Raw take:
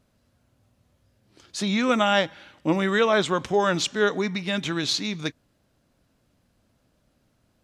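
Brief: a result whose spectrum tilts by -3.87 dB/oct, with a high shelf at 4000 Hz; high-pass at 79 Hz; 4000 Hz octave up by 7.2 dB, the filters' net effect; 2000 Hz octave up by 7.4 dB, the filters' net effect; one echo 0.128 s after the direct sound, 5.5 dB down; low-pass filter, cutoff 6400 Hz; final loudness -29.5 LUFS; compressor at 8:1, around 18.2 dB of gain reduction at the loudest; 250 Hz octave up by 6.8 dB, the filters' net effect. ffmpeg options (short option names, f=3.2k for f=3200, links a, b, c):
-af "highpass=79,lowpass=6.4k,equalizer=f=250:t=o:g=9,equalizer=f=2k:t=o:g=7.5,highshelf=f=4k:g=6,equalizer=f=4k:t=o:g=3.5,acompressor=threshold=-31dB:ratio=8,aecho=1:1:128:0.531,volume=3.5dB"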